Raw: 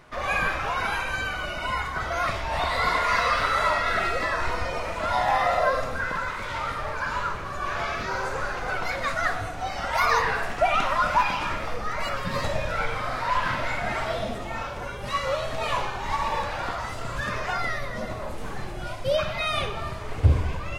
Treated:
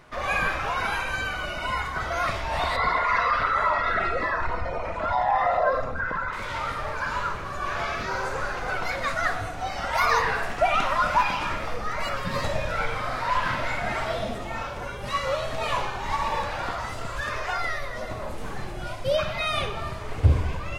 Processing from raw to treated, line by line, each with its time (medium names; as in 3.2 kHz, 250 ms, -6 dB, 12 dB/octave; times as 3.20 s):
2.76–6.33 s: resonances exaggerated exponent 1.5
17.06–18.11 s: peaking EQ 180 Hz -12.5 dB 0.97 oct